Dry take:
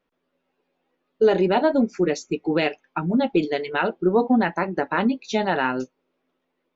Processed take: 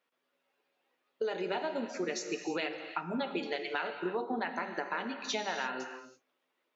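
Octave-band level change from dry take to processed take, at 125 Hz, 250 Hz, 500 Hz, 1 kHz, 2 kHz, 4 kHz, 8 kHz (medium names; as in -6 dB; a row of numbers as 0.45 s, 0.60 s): -19.5 dB, -17.0 dB, -14.0 dB, -11.5 dB, -9.0 dB, -6.0 dB, no reading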